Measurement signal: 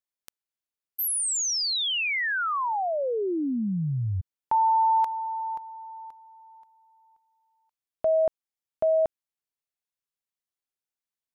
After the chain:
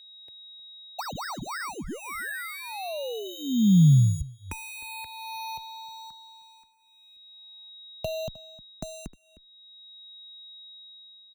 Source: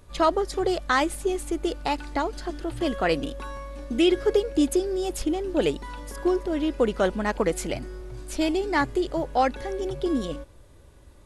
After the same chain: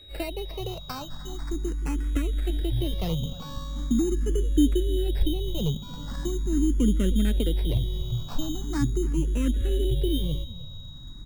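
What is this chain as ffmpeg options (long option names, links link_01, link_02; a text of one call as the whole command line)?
ffmpeg -i in.wav -filter_complex "[0:a]asubboost=boost=7:cutoff=250,acrossover=split=260[link_01][link_02];[link_02]acompressor=threshold=-31dB:ratio=6:attack=18:release=723:knee=1:detection=peak[link_03];[link_01][link_03]amix=inputs=2:normalize=0,acrusher=samples=13:mix=1:aa=0.000001,asplit=2[link_04][link_05];[link_05]adelay=309,volume=-18dB,highshelf=frequency=4000:gain=-6.95[link_06];[link_04][link_06]amix=inputs=2:normalize=0,aeval=exprs='val(0)+0.00631*sin(2*PI*3800*n/s)':channel_layout=same,asplit=2[link_07][link_08];[link_08]afreqshift=0.41[link_09];[link_07][link_09]amix=inputs=2:normalize=1" out.wav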